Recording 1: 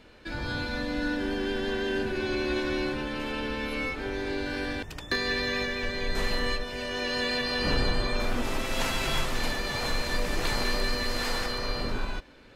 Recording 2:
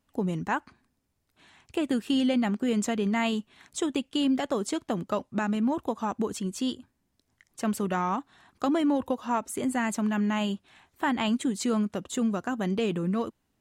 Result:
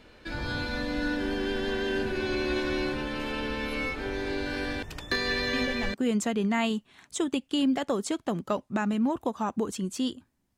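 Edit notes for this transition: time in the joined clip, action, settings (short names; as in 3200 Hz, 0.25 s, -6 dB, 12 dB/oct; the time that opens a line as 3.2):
recording 1
5.53 add recording 2 from 2.15 s 0.41 s -9 dB
5.94 switch to recording 2 from 2.56 s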